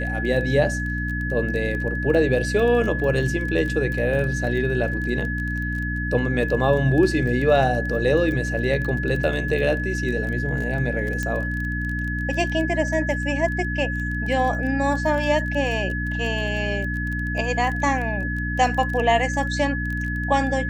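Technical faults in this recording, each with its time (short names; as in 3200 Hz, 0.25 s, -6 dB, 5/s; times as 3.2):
crackle 17/s -28 dBFS
hum 60 Hz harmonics 5 -27 dBFS
tone 1700 Hz -28 dBFS
11.23 pop -13 dBFS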